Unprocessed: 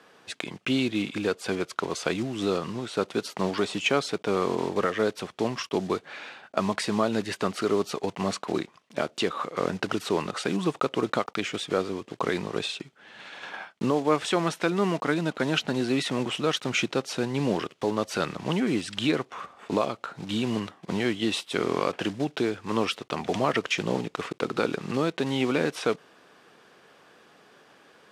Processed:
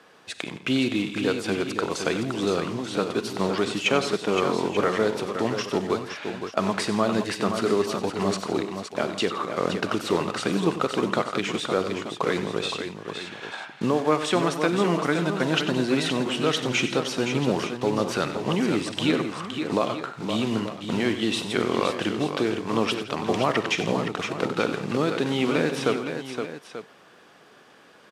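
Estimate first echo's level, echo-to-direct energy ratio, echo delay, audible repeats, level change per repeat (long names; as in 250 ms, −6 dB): −19.0 dB, −5.0 dB, 45 ms, 5, repeats not evenly spaced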